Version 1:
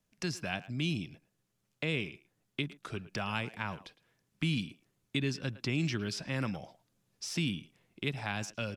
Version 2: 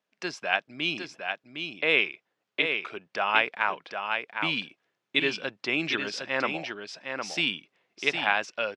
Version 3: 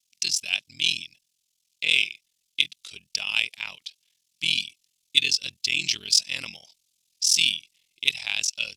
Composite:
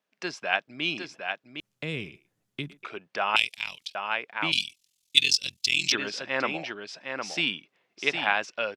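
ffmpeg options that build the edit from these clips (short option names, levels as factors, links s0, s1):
-filter_complex "[2:a]asplit=2[s0][s1];[1:a]asplit=4[s2][s3][s4][s5];[s2]atrim=end=1.602[s6];[0:a]atrim=start=1.598:end=2.832[s7];[s3]atrim=start=2.828:end=3.362[s8];[s0]atrim=start=3.358:end=3.952[s9];[s4]atrim=start=3.948:end=4.522[s10];[s1]atrim=start=4.518:end=5.922[s11];[s5]atrim=start=5.918[s12];[s6][s7]acrossfade=d=0.004:c1=hsin:c2=hsin[s13];[s13][s8]acrossfade=d=0.004:c1=hsin:c2=hsin[s14];[s14][s9]acrossfade=d=0.004:c1=hsin:c2=hsin[s15];[s15][s10]acrossfade=d=0.004:c1=hsin:c2=hsin[s16];[s16][s11]acrossfade=d=0.004:c1=hsin:c2=hsin[s17];[s17][s12]acrossfade=d=0.004:c1=hsin:c2=hsin"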